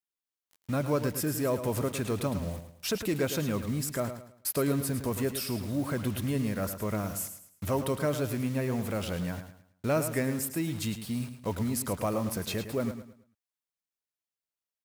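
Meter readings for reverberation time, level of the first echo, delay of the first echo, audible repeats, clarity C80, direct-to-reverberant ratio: no reverb audible, −10.0 dB, 108 ms, 3, no reverb audible, no reverb audible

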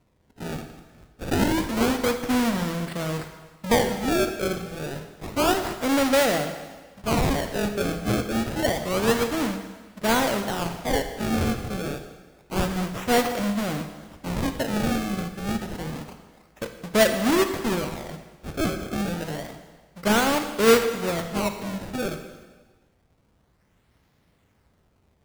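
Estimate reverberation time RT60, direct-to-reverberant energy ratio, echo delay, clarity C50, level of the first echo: 1.4 s, 7.5 dB, no echo audible, 8.5 dB, no echo audible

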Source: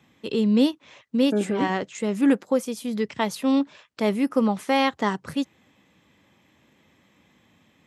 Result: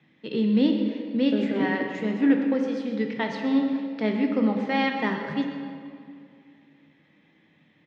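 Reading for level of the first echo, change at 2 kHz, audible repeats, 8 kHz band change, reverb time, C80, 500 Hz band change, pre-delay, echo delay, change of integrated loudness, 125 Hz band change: −14.0 dB, +1.0 dB, 1, below −15 dB, 2.3 s, 5.0 dB, −3.0 dB, 5 ms, 127 ms, −1.0 dB, −1.0 dB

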